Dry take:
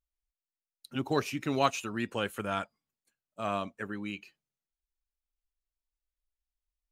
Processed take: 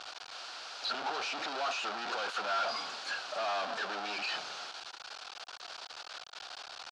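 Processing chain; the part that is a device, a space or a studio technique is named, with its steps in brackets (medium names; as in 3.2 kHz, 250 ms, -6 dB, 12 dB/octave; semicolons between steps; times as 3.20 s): home computer beeper (one-bit comparator; cabinet simulation 630–5000 Hz, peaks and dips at 740 Hz +7 dB, 1.4 kHz +7 dB, 2 kHz -8 dB, 4.5 kHz +4 dB); trim +3.5 dB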